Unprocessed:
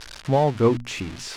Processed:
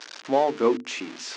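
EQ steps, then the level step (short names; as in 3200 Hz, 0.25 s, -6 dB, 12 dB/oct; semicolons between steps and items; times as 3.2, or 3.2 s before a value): Chebyshev band-pass 270–6700 Hz, order 3; notches 50/100/150/200/250/300/350/400/450 Hz; 0.0 dB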